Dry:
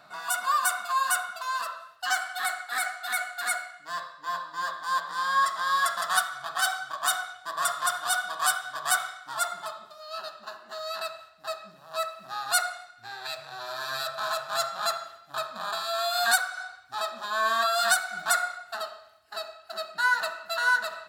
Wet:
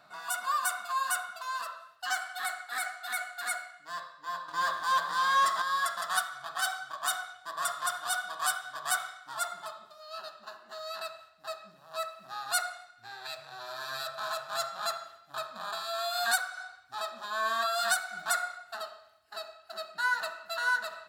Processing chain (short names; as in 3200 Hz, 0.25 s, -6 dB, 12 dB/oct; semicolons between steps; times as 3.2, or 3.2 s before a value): 4.48–5.62 sample leveller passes 2; gain -5 dB